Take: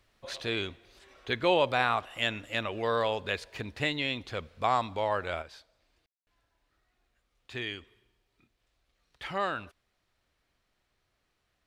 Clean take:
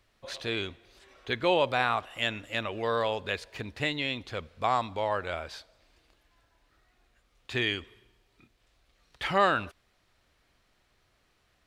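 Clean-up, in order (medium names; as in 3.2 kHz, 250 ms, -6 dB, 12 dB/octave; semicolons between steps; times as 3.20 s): room tone fill 6.06–6.27 s; gain correction +7.5 dB, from 5.42 s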